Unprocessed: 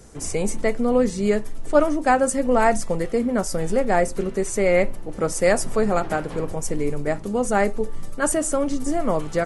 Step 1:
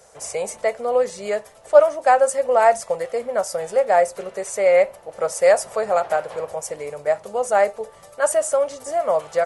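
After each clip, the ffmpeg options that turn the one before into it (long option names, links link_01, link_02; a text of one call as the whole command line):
ffmpeg -i in.wav -af "highpass=73,lowshelf=frequency=410:width_type=q:width=3:gain=-12,volume=-1dB" out.wav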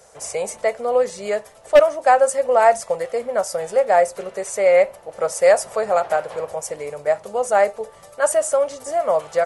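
ffmpeg -i in.wav -af "aeval=exprs='0.596*(abs(mod(val(0)/0.596+3,4)-2)-1)':channel_layout=same,volume=1dB" out.wav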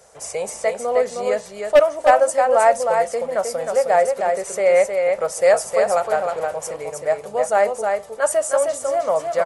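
ffmpeg -i in.wav -af "aecho=1:1:312:0.596,volume=-1dB" out.wav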